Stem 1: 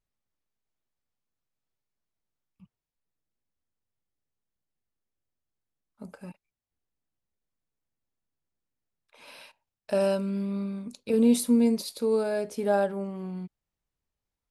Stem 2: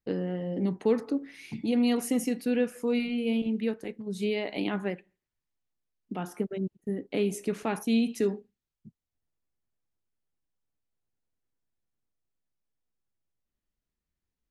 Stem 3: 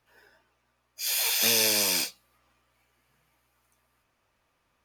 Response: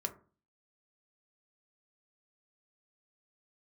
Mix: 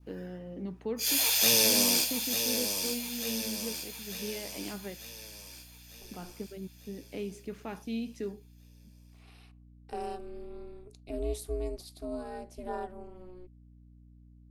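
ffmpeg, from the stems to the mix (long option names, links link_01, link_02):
-filter_complex "[0:a]aeval=exprs='val(0)*sin(2*PI*180*n/s)':channel_layout=same,volume=-9.5dB[link_01];[1:a]lowpass=7100,volume=-10dB[link_02];[2:a]volume=0.5dB,asplit=2[link_03][link_04];[link_04]volume=-7dB,aecho=0:1:896|1792|2688|3584|4480|5376|6272|7168:1|0.52|0.27|0.141|0.0731|0.038|0.0198|0.0103[link_05];[link_01][link_02][link_03][link_05]amix=inputs=4:normalize=0,aeval=exprs='val(0)+0.002*(sin(2*PI*60*n/s)+sin(2*PI*2*60*n/s)/2+sin(2*PI*3*60*n/s)/3+sin(2*PI*4*60*n/s)/4+sin(2*PI*5*60*n/s)/5)':channel_layout=same,adynamicequalizer=threshold=0.00447:dfrequency=1700:dqfactor=1.2:tfrequency=1700:tqfactor=1.2:attack=5:release=100:ratio=0.375:range=3.5:mode=cutabove:tftype=bell"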